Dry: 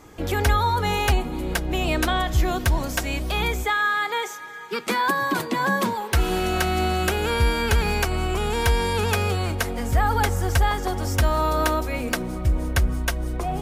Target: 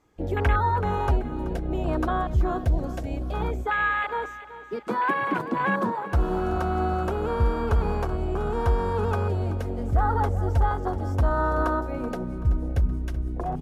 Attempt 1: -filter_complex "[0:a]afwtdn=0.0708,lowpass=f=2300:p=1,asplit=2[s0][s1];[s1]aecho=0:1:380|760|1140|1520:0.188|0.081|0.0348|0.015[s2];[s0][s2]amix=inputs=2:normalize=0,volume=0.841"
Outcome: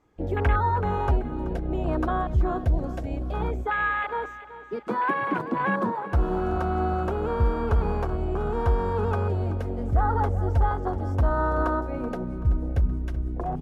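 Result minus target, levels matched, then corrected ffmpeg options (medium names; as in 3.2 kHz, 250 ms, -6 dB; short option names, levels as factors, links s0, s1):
8 kHz band -6.5 dB
-filter_complex "[0:a]afwtdn=0.0708,lowpass=f=6200:p=1,asplit=2[s0][s1];[s1]aecho=0:1:380|760|1140|1520:0.188|0.081|0.0348|0.015[s2];[s0][s2]amix=inputs=2:normalize=0,volume=0.841"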